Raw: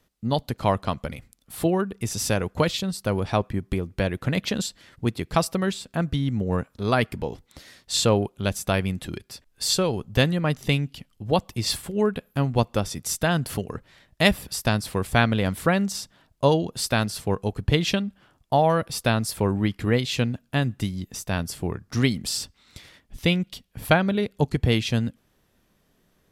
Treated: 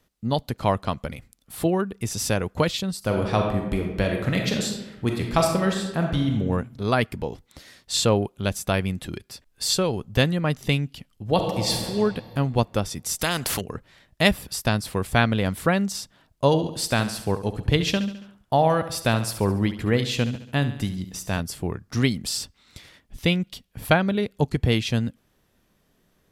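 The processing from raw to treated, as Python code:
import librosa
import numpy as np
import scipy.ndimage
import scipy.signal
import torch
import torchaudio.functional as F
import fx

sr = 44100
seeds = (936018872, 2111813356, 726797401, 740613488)

y = fx.reverb_throw(x, sr, start_s=2.98, length_s=3.39, rt60_s=1.0, drr_db=1.5)
y = fx.reverb_throw(y, sr, start_s=11.26, length_s=0.62, rt60_s=2.3, drr_db=2.0)
y = fx.spectral_comp(y, sr, ratio=2.0, at=(13.19, 13.61))
y = fx.echo_feedback(y, sr, ms=70, feedback_pct=53, wet_db=-12.5, at=(16.52, 21.39), fade=0.02)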